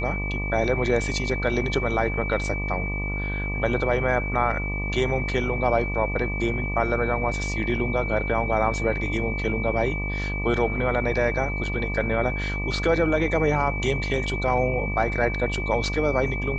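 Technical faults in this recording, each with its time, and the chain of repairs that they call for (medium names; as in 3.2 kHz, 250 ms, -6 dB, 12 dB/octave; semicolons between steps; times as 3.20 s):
buzz 50 Hz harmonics 24 -29 dBFS
whine 2.3 kHz -30 dBFS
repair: band-stop 2.3 kHz, Q 30; de-hum 50 Hz, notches 24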